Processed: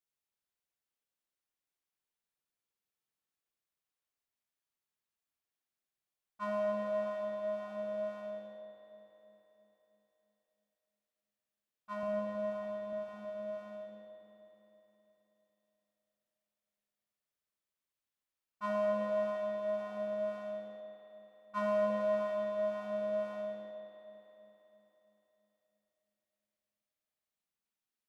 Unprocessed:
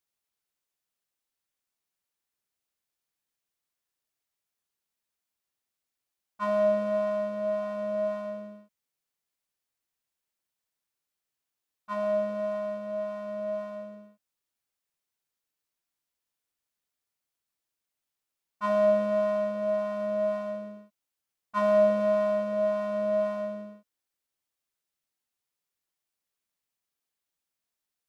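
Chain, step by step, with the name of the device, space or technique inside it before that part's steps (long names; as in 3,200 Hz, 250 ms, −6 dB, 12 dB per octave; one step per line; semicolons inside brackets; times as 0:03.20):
0:12.03–0:12.93: low-shelf EQ 190 Hz +10.5 dB
dub delay into a spring reverb (feedback echo with a low-pass in the loop 321 ms, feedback 62%, low-pass 830 Hz, level −9.5 dB; spring reverb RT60 3.9 s, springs 52 ms, chirp 20 ms, DRR 0 dB)
level −8 dB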